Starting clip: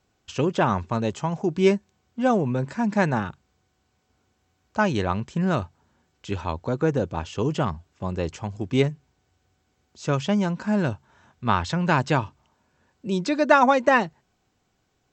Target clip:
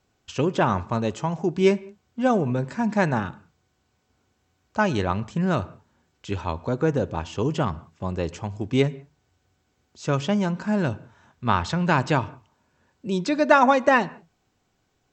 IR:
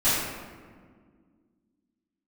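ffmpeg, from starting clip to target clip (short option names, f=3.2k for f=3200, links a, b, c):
-filter_complex "[0:a]asplit=2[a][b];[1:a]atrim=start_sample=2205,afade=t=out:st=0.25:d=0.01,atrim=end_sample=11466,lowpass=4.3k[c];[b][c]afir=irnorm=-1:irlink=0,volume=-32.5dB[d];[a][d]amix=inputs=2:normalize=0"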